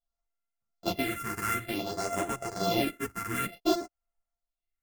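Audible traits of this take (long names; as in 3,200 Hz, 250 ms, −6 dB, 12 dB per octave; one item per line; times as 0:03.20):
a buzz of ramps at a fixed pitch in blocks of 64 samples
phaser sweep stages 4, 0.55 Hz, lowest notch 610–4,300 Hz
tremolo triangle 1.5 Hz, depth 50%
a shimmering, thickened sound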